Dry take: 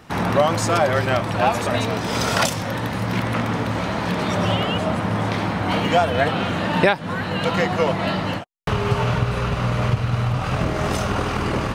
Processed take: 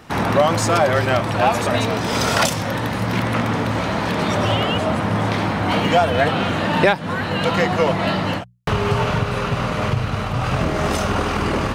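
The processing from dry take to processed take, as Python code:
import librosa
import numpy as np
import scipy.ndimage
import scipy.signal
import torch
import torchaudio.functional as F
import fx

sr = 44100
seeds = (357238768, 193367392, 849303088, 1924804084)

p1 = fx.hum_notches(x, sr, base_hz=60, count=3)
p2 = np.clip(10.0 ** (17.5 / 20.0) * p1, -1.0, 1.0) / 10.0 ** (17.5 / 20.0)
y = p1 + (p2 * librosa.db_to_amplitude(-8.5))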